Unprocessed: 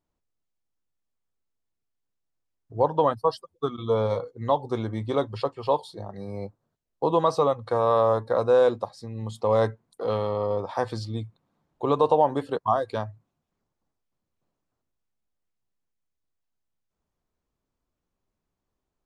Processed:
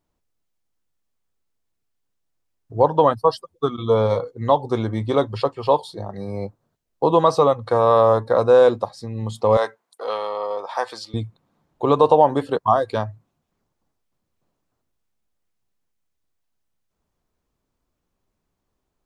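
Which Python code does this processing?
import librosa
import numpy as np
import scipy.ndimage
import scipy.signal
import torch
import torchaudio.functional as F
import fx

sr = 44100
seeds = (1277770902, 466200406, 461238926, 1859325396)

y = fx.highpass(x, sr, hz=680.0, slope=12, at=(9.57, 11.14))
y = y * 10.0 ** (6.0 / 20.0)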